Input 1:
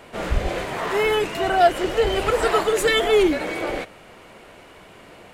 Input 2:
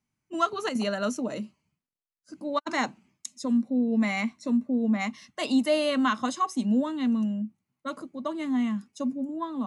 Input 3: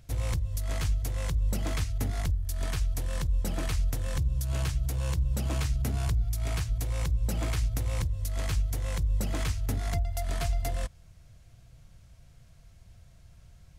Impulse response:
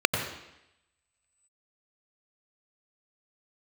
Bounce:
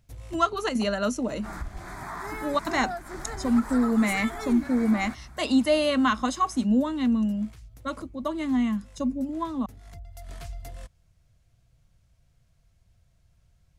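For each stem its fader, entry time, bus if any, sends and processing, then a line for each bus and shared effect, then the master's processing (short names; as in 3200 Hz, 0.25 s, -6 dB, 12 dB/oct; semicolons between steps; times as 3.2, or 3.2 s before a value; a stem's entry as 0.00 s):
-5.5 dB, 1.30 s, no send, fixed phaser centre 1200 Hz, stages 4; compressor 6:1, threshold -26 dBFS, peak gain reduction 11.5 dB
+2.0 dB, 0.00 s, no send, dry
-9.5 dB, 0.00 s, no send, auto duck -10 dB, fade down 0.75 s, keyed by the second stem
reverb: off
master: dry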